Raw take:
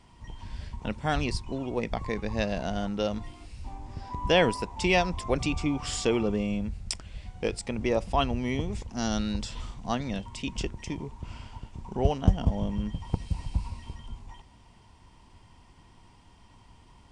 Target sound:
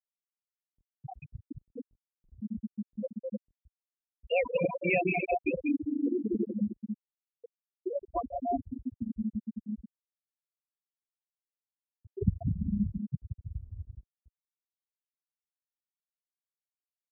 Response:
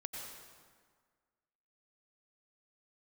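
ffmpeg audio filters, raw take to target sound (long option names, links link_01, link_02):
-filter_complex "[1:a]atrim=start_sample=2205,asetrate=24255,aresample=44100[link_01];[0:a][link_01]afir=irnorm=-1:irlink=0,asettb=1/sr,asplit=3[link_02][link_03][link_04];[link_02]atrim=end=9.994[link_05];[link_03]atrim=start=9.99:end=12.14,asetpts=PTS-STARTPTS,afade=type=in:duration=0.004:curve=qsin,afade=type=out:start_time=2.146:duration=0.004:curve=qsin,acompressor=threshold=-30dB:ratio=10[link_06];[link_04]atrim=start=12.136[link_07];[link_05][link_06]acrossfade=duration=0.004:curve1=hsin:curve2=qsin[link_08];[link_08][link_07]acrossfade=duration=0.004:curve1=qsin:curve2=hsin,equalizer=frequency=2400:width_type=o:width=0.48:gain=10.5,bandreject=frequency=450:width=12,afftfilt=real='re*gte(hypot(re,im),0.398)':imag='im*gte(hypot(re,im),0.398)':win_size=1024:overlap=0.75,highpass=220,aemphasis=mode=reproduction:type=riaa,volume=-4dB"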